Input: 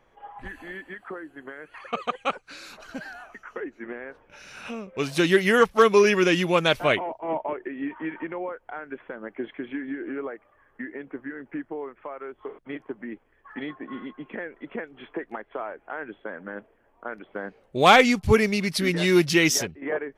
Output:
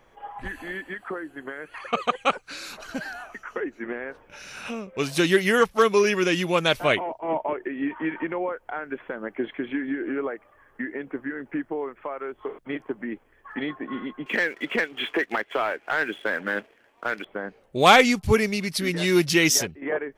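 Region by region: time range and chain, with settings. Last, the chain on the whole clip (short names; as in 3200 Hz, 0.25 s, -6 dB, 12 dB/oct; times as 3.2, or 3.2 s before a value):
14.26–17.25 weighting filter D + sample leveller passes 1
whole clip: high shelf 5100 Hz +5 dB; vocal rider within 4 dB 2 s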